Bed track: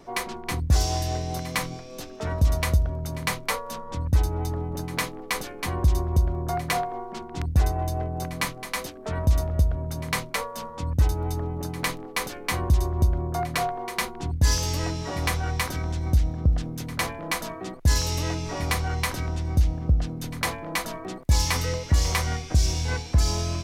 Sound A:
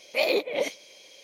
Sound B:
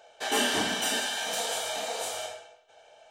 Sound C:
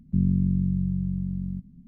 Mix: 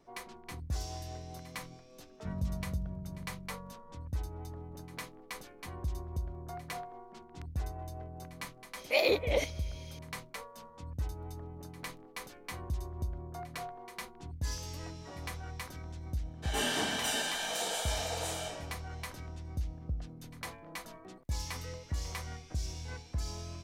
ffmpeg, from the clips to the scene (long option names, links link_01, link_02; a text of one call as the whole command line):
ffmpeg -i bed.wav -i cue0.wav -i cue1.wav -i cue2.wav -filter_complex "[0:a]volume=-15.5dB[link_01];[2:a]dynaudnorm=framelen=130:gausssize=5:maxgain=10dB[link_02];[3:a]atrim=end=1.87,asetpts=PTS-STARTPTS,volume=-17.5dB,afade=type=in:duration=0.004:curve=hsin,afade=type=out:start_time=1.866:duration=0.004:curve=hsin,adelay=2120[link_03];[1:a]atrim=end=1.23,asetpts=PTS-STARTPTS,volume=-3dB,afade=type=in:duration=0.004:curve=hsin,afade=type=out:start_time=1.226:duration=0.004:curve=hsin,adelay=8760[link_04];[link_02]atrim=end=3.1,asetpts=PTS-STARTPTS,volume=-14dB,afade=type=in:duration=0.004:curve=hsin,afade=type=out:start_time=3.096:duration=0.004:curve=hsin,adelay=16220[link_05];[link_01][link_03][link_04][link_05]amix=inputs=4:normalize=0" out.wav